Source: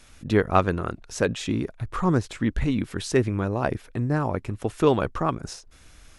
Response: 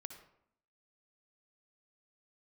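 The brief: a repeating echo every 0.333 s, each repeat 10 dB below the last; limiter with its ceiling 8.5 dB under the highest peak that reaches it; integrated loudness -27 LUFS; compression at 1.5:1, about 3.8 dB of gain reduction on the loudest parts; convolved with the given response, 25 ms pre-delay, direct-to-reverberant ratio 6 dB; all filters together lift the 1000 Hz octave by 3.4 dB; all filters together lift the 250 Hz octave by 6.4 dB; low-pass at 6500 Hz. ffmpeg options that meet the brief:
-filter_complex "[0:a]lowpass=6.5k,equalizer=f=250:t=o:g=8,equalizer=f=1k:t=o:g=4,acompressor=threshold=-20dB:ratio=1.5,alimiter=limit=-13.5dB:level=0:latency=1,aecho=1:1:333|666|999|1332:0.316|0.101|0.0324|0.0104,asplit=2[a][b];[1:a]atrim=start_sample=2205,adelay=25[c];[b][c]afir=irnorm=-1:irlink=0,volume=-1.5dB[d];[a][d]amix=inputs=2:normalize=0,volume=-2dB"

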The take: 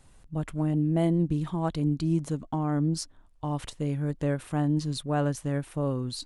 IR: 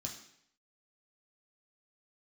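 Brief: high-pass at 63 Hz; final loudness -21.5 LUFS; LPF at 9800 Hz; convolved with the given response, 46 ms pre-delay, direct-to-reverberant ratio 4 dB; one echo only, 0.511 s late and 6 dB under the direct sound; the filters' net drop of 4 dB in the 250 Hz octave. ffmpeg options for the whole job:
-filter_complex "[0:a]highpass=63,lowpass=9.8k,equalizer=f=250:t=o:g=-6.5,aecho=1:1:511:0.501,asplit=2[a][b];[1:a]atrim=start_sample=2205,adelay=46[c];[b][c]afir=irnorm=-1:irlink=0,volume=-1.5dB[d];[a][d]amix=inputs=2:normalize=0,volume=4dB"

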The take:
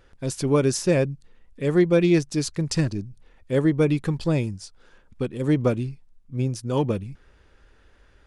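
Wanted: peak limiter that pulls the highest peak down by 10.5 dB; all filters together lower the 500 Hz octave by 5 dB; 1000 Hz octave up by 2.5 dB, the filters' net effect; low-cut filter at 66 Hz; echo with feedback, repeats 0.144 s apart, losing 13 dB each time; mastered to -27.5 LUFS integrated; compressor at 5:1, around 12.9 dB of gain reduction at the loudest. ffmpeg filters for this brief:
-af "highpass=66,equalizer=f=500:t=o:g=-7.5,equalizer=f=1k:t=o:g=5,acompressor=threshold=-32dB:ratio=5,alimiter=level_in=8.5dB:limit=-24dB:level=0:latency=1,volume=-8.5dB,aecho=1:1:144|288|432:0.224|0.0493|0.0108,volume=14dB"

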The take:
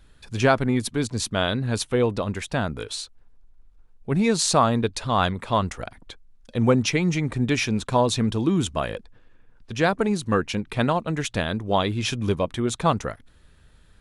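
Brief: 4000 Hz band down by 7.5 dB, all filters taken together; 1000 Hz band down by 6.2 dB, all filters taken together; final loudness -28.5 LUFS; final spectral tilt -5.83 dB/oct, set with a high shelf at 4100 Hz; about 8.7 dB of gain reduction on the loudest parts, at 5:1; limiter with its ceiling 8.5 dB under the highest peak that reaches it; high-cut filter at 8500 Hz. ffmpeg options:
-af "lowpass=8.5k,equalizer=f=1k:t=o:g=-7.5,equalizer=f=4k:t=o:g=-4,highshelf=f=4.1k:g=-8.5,acompressor=threshold=-25dB:ratio=5,volume=6dB,alimiter=limit=-18dB:level=0:latency=1"

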